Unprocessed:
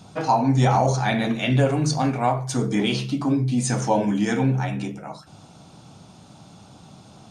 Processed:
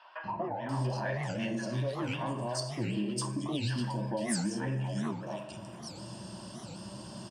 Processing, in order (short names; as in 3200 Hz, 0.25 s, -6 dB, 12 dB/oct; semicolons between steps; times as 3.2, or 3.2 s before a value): low shelf 120 Hz -9 dB; digital reverb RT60 1 s, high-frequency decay 0.95×, pre-delay 20 ms, DRR 12 dB; in parallel at -6.5 dB: soft clip -19 dBFS, distortion -12 dB; on the sum: ripple EQ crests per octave 1.3, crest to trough 12 dB; compressor 6:1, threshold -31 dBFS, peak gain reduction 18.5 dB; three bands offset in time mids, lows, highs 0.24/0.69 s, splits 870/2700 Hz; record warp 78 rpm, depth 250 cents